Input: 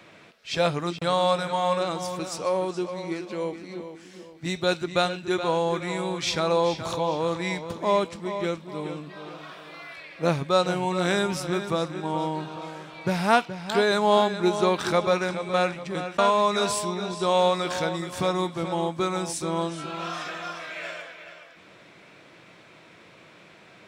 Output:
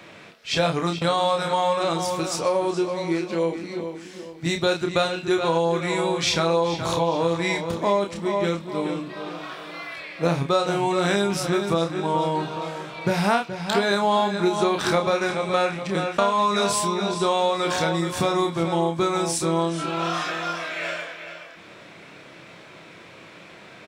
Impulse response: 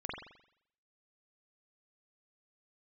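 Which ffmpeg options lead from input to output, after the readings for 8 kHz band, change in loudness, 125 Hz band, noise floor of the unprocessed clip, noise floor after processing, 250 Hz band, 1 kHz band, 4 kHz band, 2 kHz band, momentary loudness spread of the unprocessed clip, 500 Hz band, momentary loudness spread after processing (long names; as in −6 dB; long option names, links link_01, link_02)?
+4.5 dB, +2.5 dB, +3.5 dB, −52 dBFS, −45 dBFS, +3.5 dB, +2.5 dB, +3.0 dB, +3.0 dB, 15 LU, +2.0 dB, 10 LU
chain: -filter_complex "[0:a]asplit=2[link_01][link_02];[link_02]adelay=30,volume=-5dB[link_03];[link_01][link_03]amix=inputs=2:normalize=0,acompressor=threshold=-23dB:ratio=4,volume=5dB"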